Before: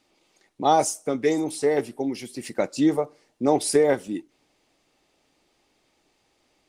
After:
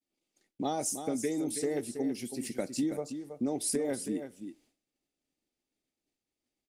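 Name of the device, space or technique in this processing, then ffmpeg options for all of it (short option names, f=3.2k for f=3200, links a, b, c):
ASMR close-microphone chain: -af "equalizer=f=250:t=o:w=0.67:g=6,equalizer=f=1k:t=o:w=0.67:g=-7,equalizer=f=10k:t=o:w=0.67:g=8,lowshelf=f=240:g=4.5,acompressor=threshold=-21dB:ratio=6,highshelf=f=7.8k:g=7.5,aecho=1:1:325:0.355,agate=range=-33dB:threshold=-52dB:ratio=3:detection=peak,equalizer=f=9.6k:t=o:w=0.28:g=-6,volume=-7.5dB"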